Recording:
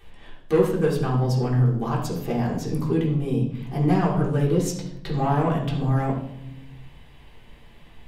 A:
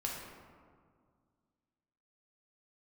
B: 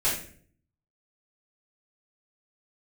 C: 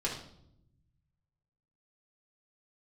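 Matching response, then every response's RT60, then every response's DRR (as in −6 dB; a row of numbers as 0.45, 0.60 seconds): C; 2.0, 0.50, 0.75 seconds; −2.5, −11.5, −5.0 decibels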